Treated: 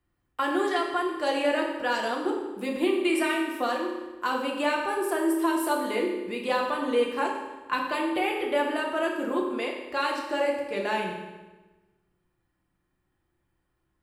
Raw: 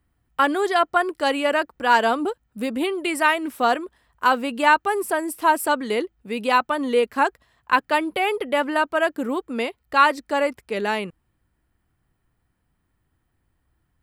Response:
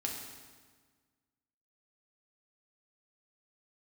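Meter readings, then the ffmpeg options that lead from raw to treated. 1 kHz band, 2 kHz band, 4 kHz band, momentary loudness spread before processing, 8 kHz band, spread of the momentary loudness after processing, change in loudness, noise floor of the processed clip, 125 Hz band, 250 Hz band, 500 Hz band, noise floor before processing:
−8.5 dB, −7.5 dB, −5.0 dB, 9 LU, −5.0 dB, 6 LU, −6.0 dB, −76 dBFS, can't be measured, −1.5 dB, −3.5 dB, −72 dBFS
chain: -filter_complex "[0:a]equalizer=frequency=76:width_type=o:width=1.9:gain=-6,acrossover=split=400|3000[link_01][link_02][link_03];[link_02]acompressor=threshold=-22dB:ratio=6[link_04];[link_01][link_04][link_03]amix=inputs=3:normalize=0,highshelf=frequency=8900:gain=-5[link_05];[1:a]atrim=start_sample=2205,asetrate=57330,aresample=44100[link_06];[link_05][link_06]afir=irnorm=-1:irlink=0,volume=-2dB"

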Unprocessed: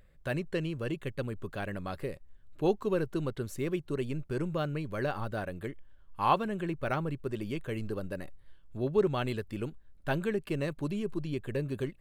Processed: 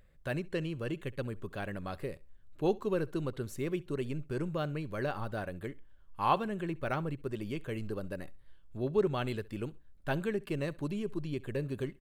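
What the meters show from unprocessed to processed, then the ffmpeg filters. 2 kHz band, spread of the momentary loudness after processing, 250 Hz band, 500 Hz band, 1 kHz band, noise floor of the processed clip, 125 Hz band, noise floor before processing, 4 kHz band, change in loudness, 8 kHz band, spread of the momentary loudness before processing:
−2.0 dB, 12 LU, −2.0 dB, −2.0 dB, −2.0 dB, −56 dBFS, −2.0 dB, −56 dBFS, −2.0 dB, −2.0 dB, −2.0 dB, 12 LU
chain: -af "aecho=1:1:66|132:0.075|0.0187,volume=-2dB"

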